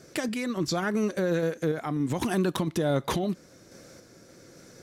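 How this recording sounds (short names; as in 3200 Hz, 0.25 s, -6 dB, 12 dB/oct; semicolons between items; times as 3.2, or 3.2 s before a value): random-step tremolo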